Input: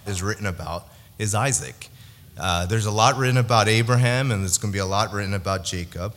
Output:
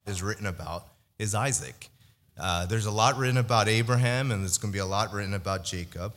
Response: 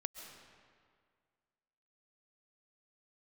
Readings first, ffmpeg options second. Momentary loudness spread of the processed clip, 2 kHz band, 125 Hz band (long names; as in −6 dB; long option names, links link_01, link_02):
11 LU, −5.5 dB, −5.5 dB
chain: -af "agate=range=-33dB:threshold=-37dB:ratio=3:detection=peak,volume=-5.5dB"